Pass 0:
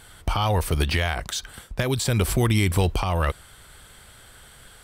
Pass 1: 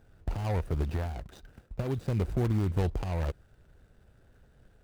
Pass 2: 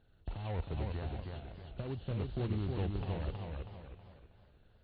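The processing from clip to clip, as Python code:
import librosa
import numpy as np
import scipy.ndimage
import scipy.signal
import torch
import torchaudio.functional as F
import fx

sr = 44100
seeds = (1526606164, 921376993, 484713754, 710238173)

y1 = scipy.signal.medfilt(x, 41)
y1 = y1 * librosa.db_to_amplitude(-6.5)
y2 = fx.freq_compress(y1, sr, knee_hz=2600.0, ratio=4.0)
y2 = y2 + 10.0 ** (-16.5 / 20.0) * np.pad(y2, (int(571 * sr / 1000.0), 0))[:len(y2)]
y2 = fx.echo_warbled(y2, sr, ms=318, feedback_pct=38, rate_hz=2.8, cents=113, wet_db=-3.5)
y2 = y2 * librosa.db_to_amplitude(-8.5)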